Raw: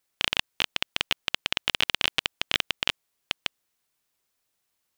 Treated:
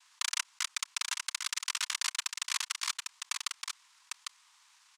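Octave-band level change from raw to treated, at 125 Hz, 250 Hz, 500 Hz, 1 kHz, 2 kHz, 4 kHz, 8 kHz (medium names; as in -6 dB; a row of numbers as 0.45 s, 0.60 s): under -40 dB, under -40 dB, under -35 dB, -5.0 dB, -8.5 dB, -9.0 dB, +7.5 dB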